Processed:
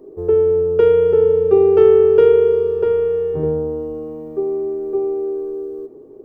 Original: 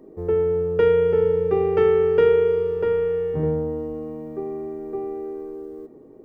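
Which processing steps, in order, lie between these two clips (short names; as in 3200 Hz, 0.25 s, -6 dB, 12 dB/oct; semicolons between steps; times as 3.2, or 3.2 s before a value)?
thirty-one-band EQ 200 Hz -9 dB, 400 Hz +9 dB, 2000 Hz -11 dB; gain +1.5 dB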